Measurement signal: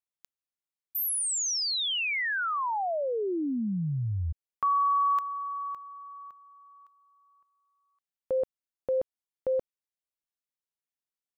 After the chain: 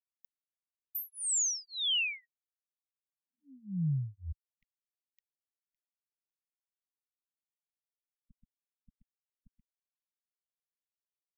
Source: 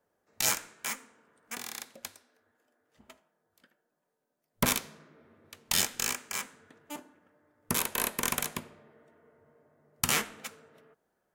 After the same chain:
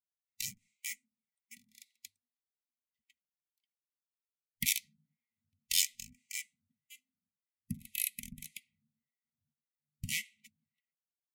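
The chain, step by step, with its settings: per-bin expansion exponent 1.5; harmonic tremolo 1.8 Hz, depth 100%, crossover 570 Hz; brick-wall FIR band-stop 250–1900 Hz; gain +1.5 dB

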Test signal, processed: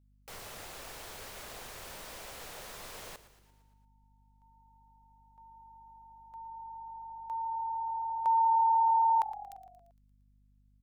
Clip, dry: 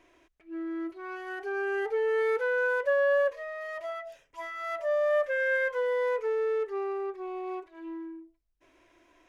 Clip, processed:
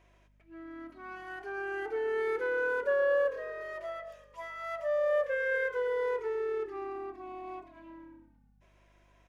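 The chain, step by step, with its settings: resonant low shelf 380 Hz -7.5 dB, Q 1.5; buzz 50 Hz, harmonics 5, -61 dBFS -7 dB/oct; frequency-shifting echo 0.115 s, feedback 58%, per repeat -37 Hz, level -15 dB; gain -4.5 dB

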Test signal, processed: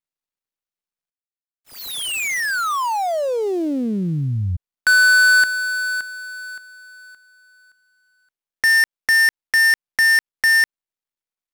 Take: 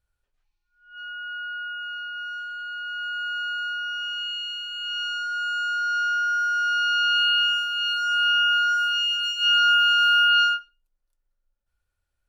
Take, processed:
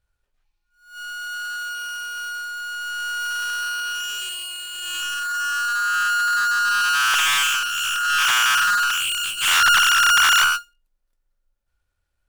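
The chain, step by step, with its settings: switching dead time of 0.096 ms; Doppler distortion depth 0.43 ms; gain +4 dB

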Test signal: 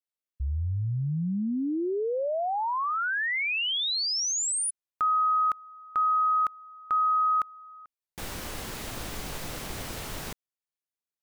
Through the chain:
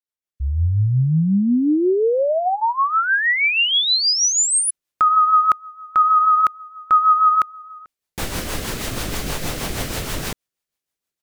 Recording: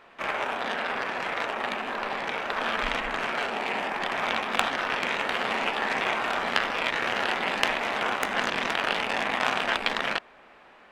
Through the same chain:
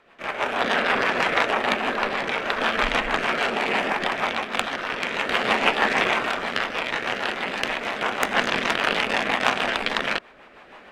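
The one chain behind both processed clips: AGC gain up to 13 dB; rotary speaker horn 6.3 Hz

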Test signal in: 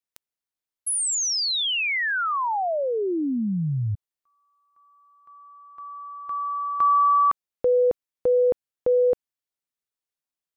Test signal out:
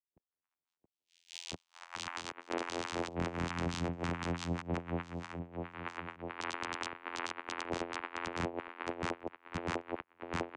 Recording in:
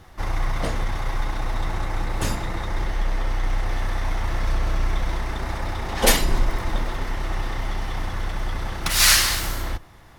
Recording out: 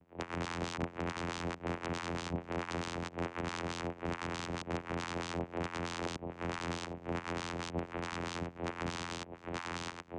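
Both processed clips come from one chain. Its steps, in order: band shelf 600 Hz -10.5 dB 2.5 oct; tape echo 0.678 s, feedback 56%, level -4 dB, low-pass 4100 Hz; LFO band-pass sine 4.6 Hz 470–3600 Hz; low shelf 130 Hz +3 dB; compressor 8:1, threshold -43 dBFS; notch 970 Hz, Q 9.9; LFO low-pass saw up 1.3 Hz 410–5500 Hz; wrapped overs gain 40.5 dB; vocoder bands 4, saw 85.6 Hz; gain +10.5 dB

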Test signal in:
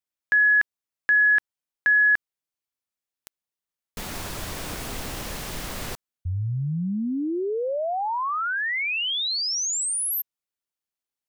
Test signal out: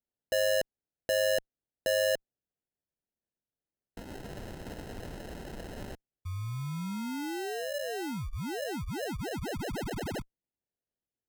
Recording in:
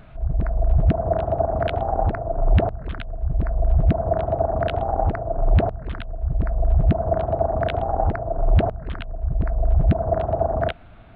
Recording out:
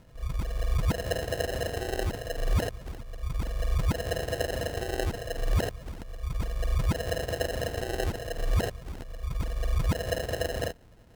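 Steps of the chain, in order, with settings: sample-and-hold 38×; added harmonics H 4 -33 dB, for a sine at -7 dBFS; gain -9 dB

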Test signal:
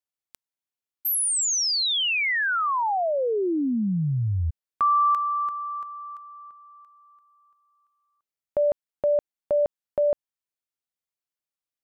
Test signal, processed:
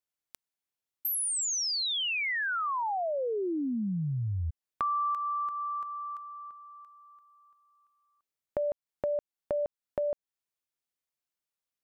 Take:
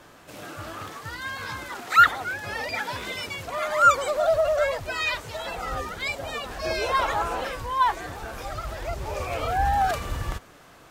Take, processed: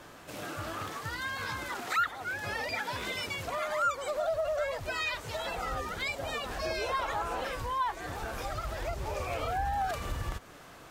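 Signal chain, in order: compressor 2.5:1, threshold -33 dBFS

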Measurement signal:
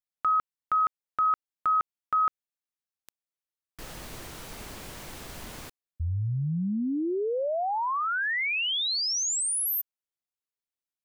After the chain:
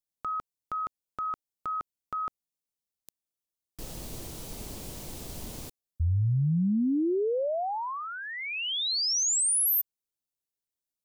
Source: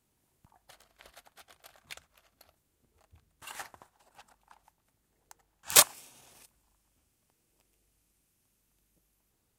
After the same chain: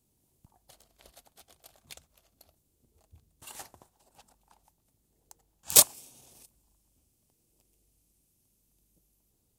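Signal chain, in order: bell 1600 Hz -13.5 dB 1.9 oct; gain +3.5 dB

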